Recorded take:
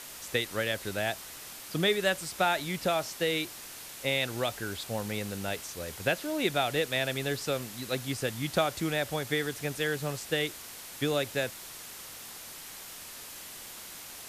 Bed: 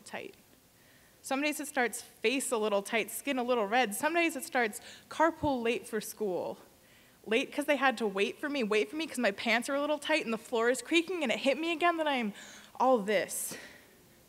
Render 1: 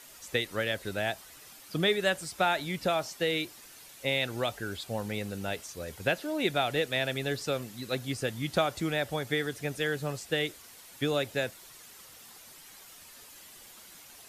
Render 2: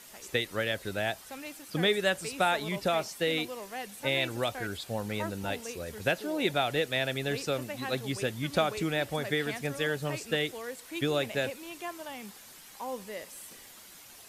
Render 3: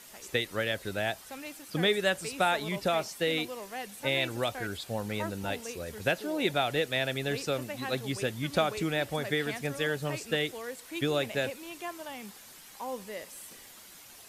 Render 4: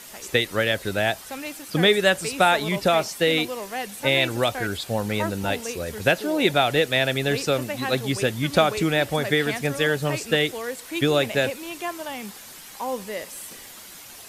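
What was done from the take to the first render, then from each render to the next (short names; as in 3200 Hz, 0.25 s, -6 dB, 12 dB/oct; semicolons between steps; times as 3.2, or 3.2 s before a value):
denoiser 9 dB, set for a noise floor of -45 dBFS
add bed -11.5 dB
nothing audible
gain +8.5 dB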